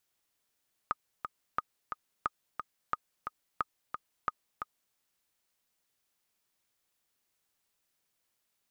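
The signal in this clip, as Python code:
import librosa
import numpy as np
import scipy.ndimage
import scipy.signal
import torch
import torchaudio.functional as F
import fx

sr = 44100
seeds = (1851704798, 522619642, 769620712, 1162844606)

y = fx.click_track(sr, bpm=178, beats=2, bars=6, hz=1240.0, accent_db=6.5, level_db=-16.0)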